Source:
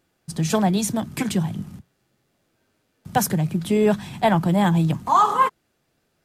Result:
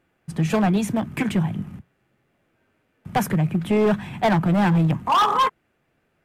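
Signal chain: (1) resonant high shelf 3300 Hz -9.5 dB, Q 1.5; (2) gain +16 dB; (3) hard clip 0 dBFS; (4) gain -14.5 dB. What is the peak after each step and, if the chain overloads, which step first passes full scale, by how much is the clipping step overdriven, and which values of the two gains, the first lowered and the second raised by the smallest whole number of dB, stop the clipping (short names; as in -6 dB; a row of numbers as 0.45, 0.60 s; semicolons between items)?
-6.0, +10.0, 0.0, -14.5 dBFS; step 2, 10.0 dB; step 2 +6 dB, step 4 -4.5 dB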